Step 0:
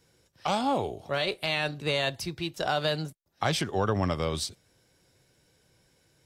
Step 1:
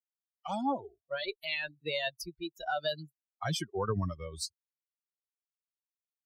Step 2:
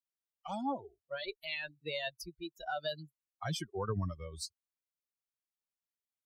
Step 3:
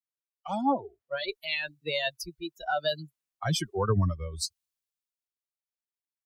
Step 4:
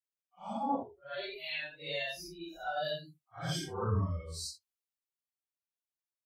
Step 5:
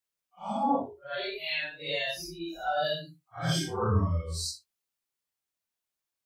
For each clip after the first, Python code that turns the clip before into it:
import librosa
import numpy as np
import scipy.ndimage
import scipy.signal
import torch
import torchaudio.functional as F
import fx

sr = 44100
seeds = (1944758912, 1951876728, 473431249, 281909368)

y1 = fx.bin_expand(x, sr, power=3.0)
y2 = fx.low_shelf(y1, sr, hz=85.0, db=6.0)
y2 = y2 * librosa.db_to_amplitude(-4.5)
y3 = fx.band_widen(y2, sr, depth_pct=40)
y3 = y3 * librosa.db_to_amplitude(8.0)
y4 = fx.phase_scramble(y3, sr, seeds[0], window_ms=200)
y4 = y4 * librosa.db_to_amplitude(-6.5)
y5 = fx.room_early_taps(y4, sr, ms=(24, 60), db=(-6.5, -17.0))
y5 = y5 * librosa.db_to_amplitude(5.5)